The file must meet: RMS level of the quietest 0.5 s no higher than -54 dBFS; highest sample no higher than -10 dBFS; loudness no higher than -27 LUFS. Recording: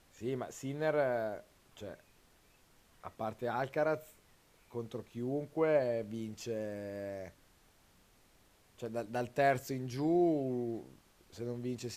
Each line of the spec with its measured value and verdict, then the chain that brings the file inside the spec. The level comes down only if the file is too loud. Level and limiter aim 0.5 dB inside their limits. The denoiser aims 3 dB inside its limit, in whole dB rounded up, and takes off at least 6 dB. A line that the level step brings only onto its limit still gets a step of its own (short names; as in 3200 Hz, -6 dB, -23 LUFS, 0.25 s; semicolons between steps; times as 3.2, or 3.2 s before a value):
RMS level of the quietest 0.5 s -66 dBFS: OK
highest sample -16.0 dBFS: OK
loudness -36.0 LUFS: OK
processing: none